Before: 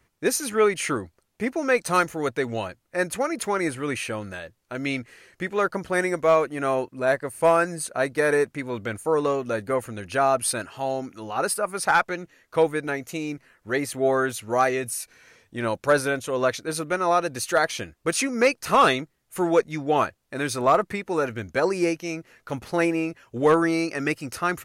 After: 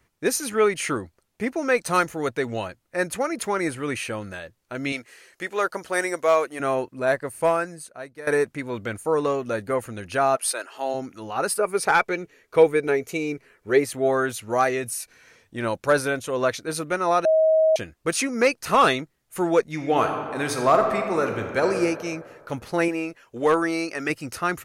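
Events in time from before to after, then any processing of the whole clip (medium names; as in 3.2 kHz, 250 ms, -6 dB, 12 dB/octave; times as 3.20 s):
4.92–6.60 s: tone controls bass -14 dB, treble +5 dB
7.35–8.27 s: fade out quadratic, to -16 dB
10.35–10.93 s: high-pass 620 Hz -> 210 Hz 24 dB/octave
11.59–13.84 s: small resonant body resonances 420/2300 Hz, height 12 dB
17.25–17.76 s: bleep 635 Hz -14.5 dBFS
19.71–21.65 s: reverb throw, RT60 2 s, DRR 4 dB
22.88–24.10 s: peaking EQ 91 Hz -10 dB 2.5 oct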